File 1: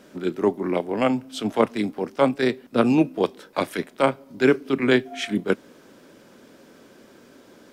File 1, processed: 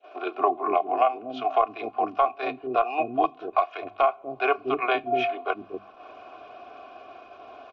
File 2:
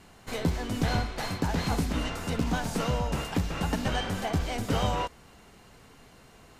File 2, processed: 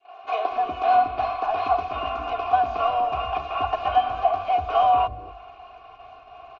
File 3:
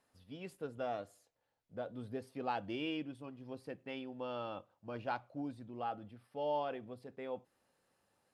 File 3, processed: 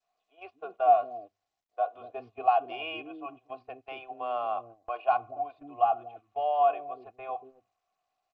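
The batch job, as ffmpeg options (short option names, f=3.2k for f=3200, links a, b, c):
-filter_complex "[0:a]bandreject=f=50:t=h:w=6,bandreject=f=100:t=h:w=6,bandreject=f=150:t=h:w=6,bandreject=f=200:t=h:w=6,acrossover=split=380[a][b];[a]adelay=240[c];[c][b]amix=inputs=2:normalize=0,asplit=2[d][e];[e]acompressor=threshold=-38dB:ratio=6,volume=3dB[f];[d][f]amix=inputs=2:normalize=0,adynamicequalizer=threshold=0.00794:dfrequency=1100:dqfactor=1.5:tfrequency=1100:tqfactor=1.5:attack=5:release=100:ratio=0.375:range=2:mode=boostabove:tftype=bell,asplit=3[g][h][i];[g]bandpass=f=730:t=q:w=8,volume=0dB[j];[h]bandpass=f=1.09k:t=q:w=8,volume=-6dB[k];[i]bandpass=f=2.44k:t=q:w=8,volume=-9dB[l];[j][k][l]amix=inputs=3:normalize=0,acontrast=40,alimiter=limit=-17.5dB:level=0:latency=1:release=492,lowpass=3.9k,aecho=1:1:2.8:0.65,agate=range=-15dB:threshold=-51dB:ratio=16:detection=peak,asubboost=boost=8.5:cutoff=83,volume=6dB" -ar 16000 -c:a sbc -b:a 64k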